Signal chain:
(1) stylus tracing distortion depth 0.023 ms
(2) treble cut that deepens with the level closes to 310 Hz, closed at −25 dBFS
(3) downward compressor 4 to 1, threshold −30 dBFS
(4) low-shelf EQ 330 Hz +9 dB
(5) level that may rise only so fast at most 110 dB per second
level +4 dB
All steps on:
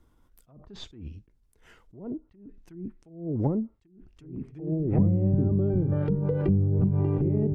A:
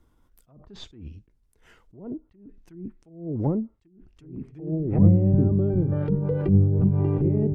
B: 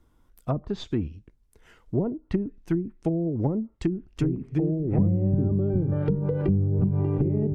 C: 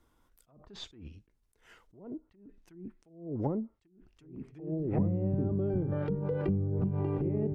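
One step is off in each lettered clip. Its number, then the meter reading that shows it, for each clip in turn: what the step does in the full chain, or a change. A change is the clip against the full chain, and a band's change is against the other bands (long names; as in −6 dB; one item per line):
3, average gain reduction 2.0 dB
5, change in momentary loudness spread −12 LU
4, 1 kHz band +5.0 dB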